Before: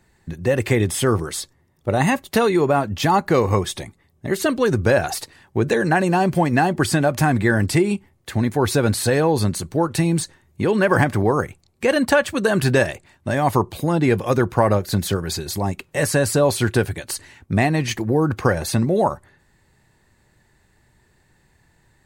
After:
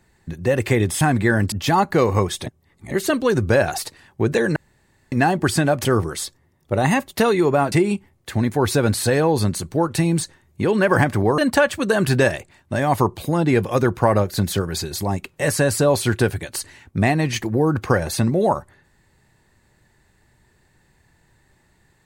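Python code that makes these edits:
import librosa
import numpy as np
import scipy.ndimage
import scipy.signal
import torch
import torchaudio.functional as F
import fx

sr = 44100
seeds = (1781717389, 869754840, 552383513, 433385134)

y = fx.edit(x, sr, fx.swap(start_s=1.01, length_s=1.87, other_s=7.21, other_length_s=0.51),
    fx.reverse_span(start_s=3.82, length_s=0.45),
    fx.room_tone_fill(start_s=5.92, length_s=0.56),
    fx.cut(start_s=11.38, length_s=0.55), tone=tone)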